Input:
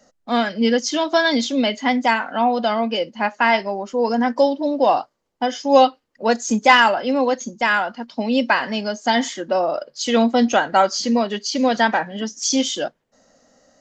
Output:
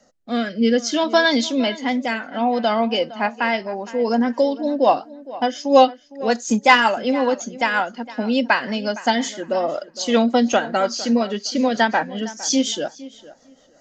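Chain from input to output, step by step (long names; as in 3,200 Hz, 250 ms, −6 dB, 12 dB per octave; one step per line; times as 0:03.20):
rotating-speaker cabinet horn 0.6 Hz, later 5.5 Hz, at 0:03.41
tape delay 460 ms, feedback 22%, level −16.5 dB, low-pass 2,900 Hz
level +1.5 dB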